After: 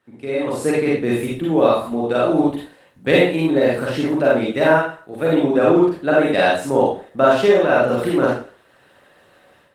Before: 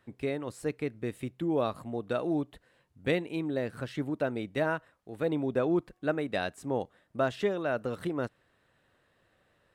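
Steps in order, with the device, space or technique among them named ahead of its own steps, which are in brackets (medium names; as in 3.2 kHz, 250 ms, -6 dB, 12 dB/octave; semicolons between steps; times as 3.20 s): far-field microphone of a smart speaker (reverberation RT60 0.45 s, pre-delay 37 ms, DRR -5.5 dB; high-pass 150 Hz 12 dB/octave; level rider gain up to 13 dB; Opus 24 kbps 48 kHz)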